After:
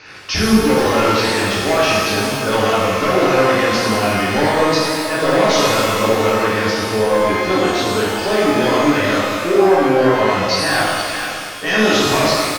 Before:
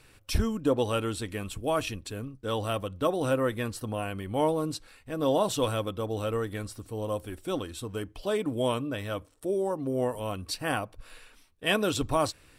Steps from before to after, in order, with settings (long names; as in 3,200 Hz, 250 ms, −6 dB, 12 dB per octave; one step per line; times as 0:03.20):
high-pass filter 250 Hz 6 dB per octave
soft clipping −27 dBFS, distortion −10 dB
Chebyshev low-pass with heavy ripple 6,600 Hz, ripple 6 dB
single-tap delay 466 ms −16 dB
boost into a limiter +34 dB
reverb with rising layers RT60 1.6 s, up +12 semitones, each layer −8 dB, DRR −7.5 dB
level −14.5 dB